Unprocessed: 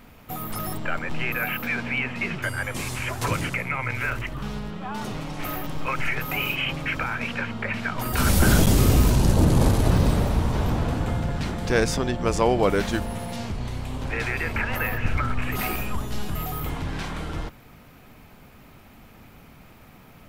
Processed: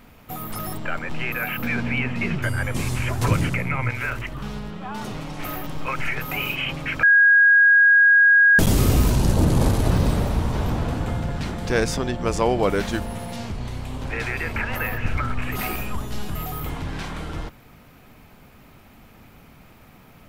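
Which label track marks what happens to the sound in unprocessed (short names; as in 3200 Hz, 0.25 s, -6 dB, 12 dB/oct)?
1.580000	3.900000	low shelf 330 Hz +9 dB
7.030000	8.590000	bleep 1640 Hz -10.5 dBFS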